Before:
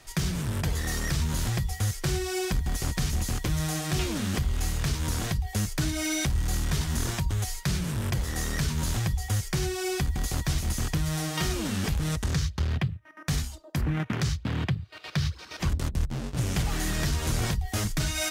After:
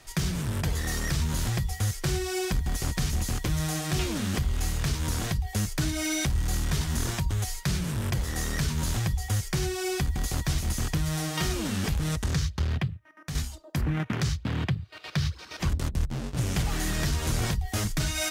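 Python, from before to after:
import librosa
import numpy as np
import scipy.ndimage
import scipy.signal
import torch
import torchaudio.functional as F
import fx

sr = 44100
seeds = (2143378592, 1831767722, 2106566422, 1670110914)

y = fx.edit(x, sr, fx.fade_out_to(start_s=12.72, length_s=0.63, floor_db=-8.5), tone=tone)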